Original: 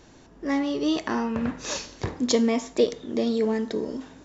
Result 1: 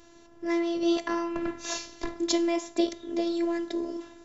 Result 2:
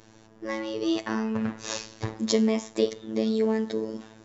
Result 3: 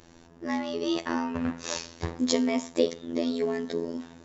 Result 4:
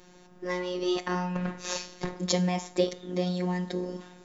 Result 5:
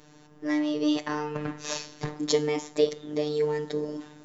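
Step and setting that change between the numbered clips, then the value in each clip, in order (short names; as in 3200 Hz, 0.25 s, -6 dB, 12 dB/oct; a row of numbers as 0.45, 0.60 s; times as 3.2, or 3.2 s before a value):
robotiser, frequency: 340, 110, 84, 180, 150 Hz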